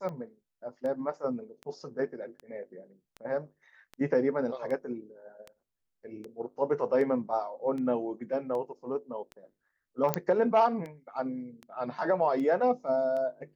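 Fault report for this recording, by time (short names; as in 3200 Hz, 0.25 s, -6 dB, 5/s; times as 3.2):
tick 78 rpm -28 dBFS
10.14 pop -10 dBFS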